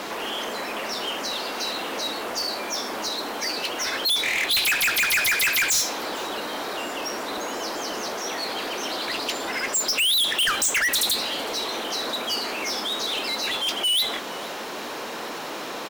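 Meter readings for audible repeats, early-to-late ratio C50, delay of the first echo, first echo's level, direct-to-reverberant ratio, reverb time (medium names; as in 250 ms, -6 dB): 1, no reverb, 458 ms, -22.5 dB, no reverb, no reverb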